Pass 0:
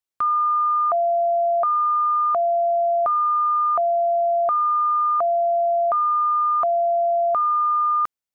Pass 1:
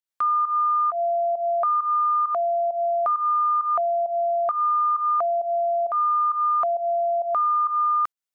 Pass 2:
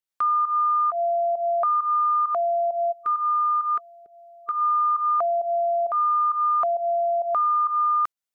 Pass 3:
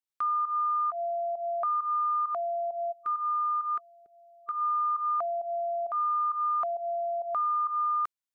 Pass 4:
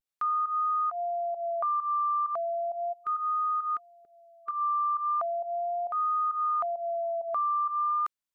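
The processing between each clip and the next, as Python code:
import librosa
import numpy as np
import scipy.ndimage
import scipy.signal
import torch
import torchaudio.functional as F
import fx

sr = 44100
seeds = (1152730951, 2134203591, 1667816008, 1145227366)

y1 = fx.low_shelf(x, sr, hz=430.0, db=-10.0)
y1 = fx.volume_shaper(y1, sr, bpm=133, per_beat=1, depth_db=-13, release_ms=156.0, shape='fast start')
y2 = fx.spec_box(y1, sr, start_s=2.92, length_s=1.7, low_hz=480.0, high_hz=1200.0, gain_db=-25)
y3 = fx.peak_eq(y2, sr, hz=510.0, db=-4.0, octaves=0.91)
y3 = F.gain(torch.from_numpy(y3), -6.0).numpy()
y4 = fx.vibrato(y3, sr, rate_hz=0.37, depth_cents=40.0)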